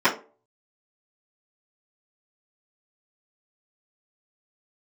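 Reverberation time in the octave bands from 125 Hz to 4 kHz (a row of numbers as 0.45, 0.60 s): 0.35, 0.35, 0.45, 0.30, 0.25, 0.20 s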